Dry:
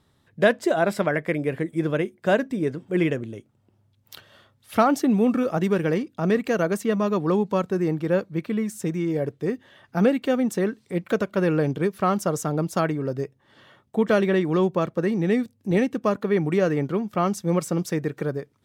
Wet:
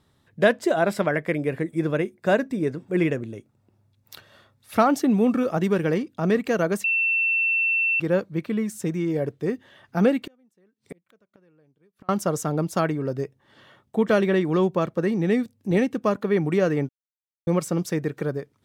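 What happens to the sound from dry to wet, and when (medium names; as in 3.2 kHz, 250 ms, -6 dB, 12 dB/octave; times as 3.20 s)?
1.48–4.80 s: band-stop 3.1 kHz, Q 9.5
6.84–8.00 s: bleep 2.69 kHz -19 dBFS
10.26–12.09 s: inverted gate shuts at -25 dBFS, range -38 dB
16.89–17.47 s: mute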